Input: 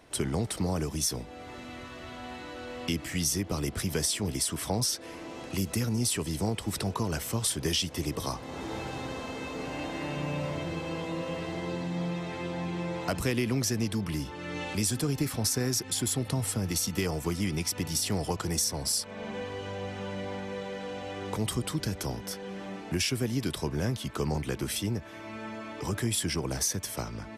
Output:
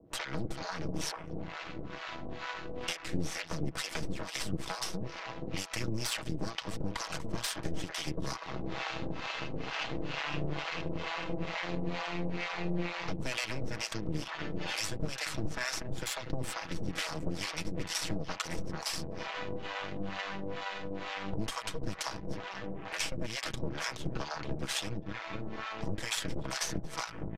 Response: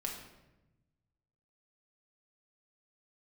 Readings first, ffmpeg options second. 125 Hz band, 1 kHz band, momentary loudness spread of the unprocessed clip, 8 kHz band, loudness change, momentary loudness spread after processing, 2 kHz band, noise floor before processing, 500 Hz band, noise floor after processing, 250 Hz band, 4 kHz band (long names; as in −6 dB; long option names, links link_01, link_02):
−7.5 dB, −1.0 dB, 9 LU, −10.0 dB, −6.0 dB, 5 LU, +1.5 dB, −43 dBFS, −6.0 dB, −44 dBFS, −7.0 dB, −3.5 dB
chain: -filter_complex "[0:a]highshelf=frequency=5800:gain=-6,asplit=2[link_01][link_02];[link_02]adelay=240,lowpass=frequency=1100:poles=1,volume=-7dB,asplit=2[link_03][link_04];[link_04]adelay=240,lowpass=frequency=1100:poles=1,volume=0.53,asplit=2[link_05][link_06];[link_06]adelay=240,lowpass=frequency=1100:poles=1,volume=0.53,asplit=2[link_07][link_08];[link_08]adelay=240,lowpass=frequency=1100:poles=1,volume=0.53,asplit=2[link_09][link_10];[link_10]adelay=240,lowpass=frequency=1100:poles=1,volume=0.53,asplit=2[link_11][link_12];[link_12]adelay=240,lowpass=frequency=1100:poles=1,volume=0.53[link_13];[link_03][link_05][link_07][link_09][link_11][link_13]amix=inputs=6:normalize=0[link_14];[link_01][link_14]amix=inputs=2:normalize=0,acrossover=split=190|810|2500[link_15][link_16][link_17][link_18];[link_15]acompressor=threshold=-43dB:ratio=4[link_19];[link_16]acompressor=threshold=-46dB:ratio=4[link_20];[link_17]acompressor=threshold=-43dB:ratio=4[link_21];[link_18]acompressor=threshold=-38dB:ratio=4[link_22];[link_19][link_20][link_21][link_22]amix=inputs=4:normalize=0,aeval=exprs='0.106*(cos(1*acos(clip(val(0)/0.106,-1,1)))-cos(1*PI/2))+0.0376*(cos(8*acos(clip(val(0)/0.106,-1,1)))-cos(8*PI/2))':channel_layout=same,equalizer=frequency=12000:width_type=o:width=0.72:gain=-10.5,afwtdn=0.00282,aecho=1:1:6.2:0.41,acrossover=split=620[link_23][link_24];[link_23]aeval=exprs='val(0)*(1-1/2+1/2*cos(2*PI*2.2*n/s))':channel_layout=same[link_25];[link_24]aeval=exprs='val(0)*(1-1/2-1/2*cos(2*PI*2.2*n/s))':channel_layout=same[link_26];[link_25][link_26]amix=inputs=2:normalize=0,aresample=32000,aresample=44100,volume=2.5dB"